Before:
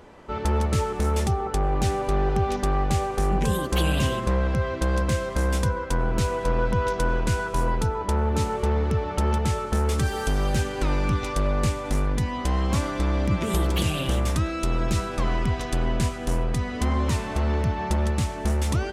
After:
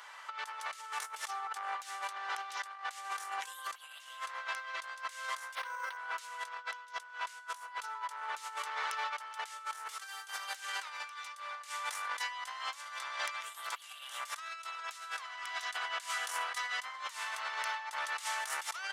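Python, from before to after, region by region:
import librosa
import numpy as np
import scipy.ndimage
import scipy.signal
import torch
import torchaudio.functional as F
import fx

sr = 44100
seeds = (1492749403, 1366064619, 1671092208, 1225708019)

y = fx.chain(x, sr, fx.peak_eq(hz=540.0, db=4.5, octaves=0.24),
    fx.resample_linear(factor=6), at=(5.55, 5.97))
y = scipy.signal.sosfilt(scipy.signal.butter(4, 1100.0, 'highpass', fs=sr, output='sos'), y)
y = fx.notch(y, sr, hz=2500.0, q=16.0)
y = fx.over_compress(y, sr, threshold_db=-41.0, ratio=-0.5)
y = F.gain(torch.from_numpy(y), 1.0).numpy()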